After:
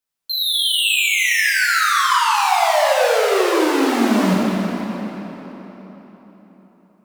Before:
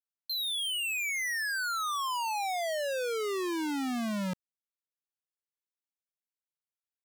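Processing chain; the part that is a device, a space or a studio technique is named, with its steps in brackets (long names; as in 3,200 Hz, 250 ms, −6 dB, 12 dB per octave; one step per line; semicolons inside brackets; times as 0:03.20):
0:01.90–0:02.34: low-pass filter 11,000 Hz
cathedral (convolution reverb RT60 4.2 s, pre-delay 4 ms, DRR −6 dB)
level +9 dB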